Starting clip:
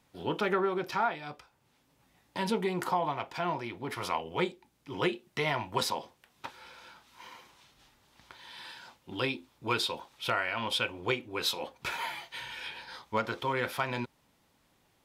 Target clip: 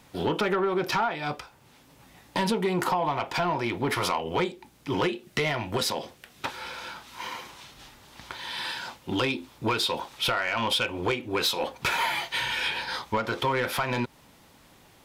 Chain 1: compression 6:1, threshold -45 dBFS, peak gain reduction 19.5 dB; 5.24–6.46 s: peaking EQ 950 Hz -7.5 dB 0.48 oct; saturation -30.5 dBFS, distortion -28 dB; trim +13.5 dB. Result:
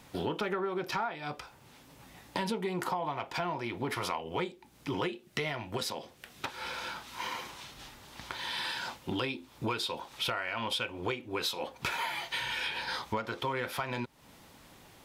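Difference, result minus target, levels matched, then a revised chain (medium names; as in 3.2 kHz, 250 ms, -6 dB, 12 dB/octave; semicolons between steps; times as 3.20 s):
compression: peak gain reduction +9 dB
compression 6:1, threshold -34.5 dBFS, peak gain reduction 10.5 dB; 5.24–6.46 s: peaking EQ 950 Hz -7.5 dB 0.48 oct; saturation -30.5 dBFS, distortion -16 dB; trim +13.5 dB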